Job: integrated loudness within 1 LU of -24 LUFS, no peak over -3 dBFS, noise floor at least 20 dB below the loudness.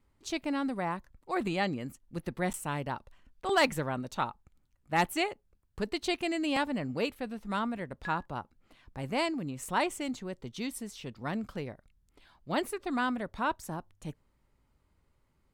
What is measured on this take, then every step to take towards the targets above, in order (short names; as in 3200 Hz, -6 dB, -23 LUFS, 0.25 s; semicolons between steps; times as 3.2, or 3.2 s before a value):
dropouts 1; longest dropout 9.2 ms; loudness -33.5 LUFS; peak -16.5 dBFS; loudness target -24.0 LUFS
-> interpolate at 2.53, 9.2 ms; gain +9.5 dB